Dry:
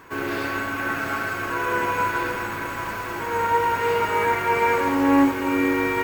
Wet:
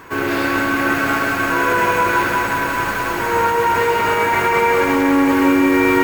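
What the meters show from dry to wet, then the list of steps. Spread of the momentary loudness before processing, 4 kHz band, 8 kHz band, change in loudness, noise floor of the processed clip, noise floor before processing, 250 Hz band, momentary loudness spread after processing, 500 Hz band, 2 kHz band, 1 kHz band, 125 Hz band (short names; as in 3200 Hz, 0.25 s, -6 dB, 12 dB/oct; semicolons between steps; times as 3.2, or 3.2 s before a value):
9 LU, +8.0 dB, +8.5 dB, +6.5 dB, -21 dBFS, -30 dBFS, +6.5 dB, 5 LU, +6.5 dB, +7.5 dB, +6.0 dB, +6.0 dB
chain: in parallel at +0.5 dB: negative-ratio compressor -23 dBFS, ratio -0.5; on the sum: lo-fi delay 0.184 s, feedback 80%, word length 6-bit, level -7 dB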